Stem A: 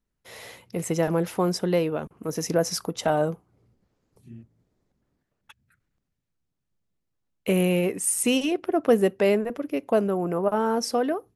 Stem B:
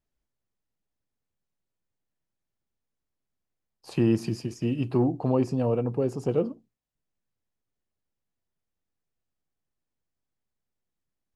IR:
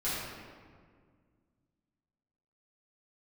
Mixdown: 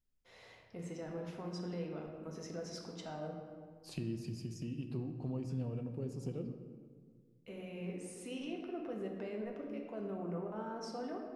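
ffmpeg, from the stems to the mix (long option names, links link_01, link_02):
-filter_complex "[0:a]lowpass=5800,alimiter=limit=-20dB:level=0:latency=1:release=71,volume=-19.5dB,asplit=2[link_01][link_02];[link_02]volume=-4.5dB[link_03];[1:a]equalizer=frequency=840:width_type=o:width=2.9:gain=-13.5,acompressor=threshold=-38dB:ratio=3,volume=-3.5dB,asplit=3[link_04][link_05][link_06];[link_05]volume=-12dB[link_07];[link_06]apad=whole_len=500559[link_08];[link_01][link_08]sidechaincompress=threshold=-59dB:ratio=8:attack=16:release=1320[link_09];[2:a]atrim=start_sample=2205[link_10];[link_03][link_07]amix=inputs=2:normalize=0[link_11];[link_11][link_10]afir=irnorm=-1:irlink=0[link_12];[link_09][link_04][link_12]amix=inputs=3:normalize=0,highshelf=frequency=8800:gain=-4"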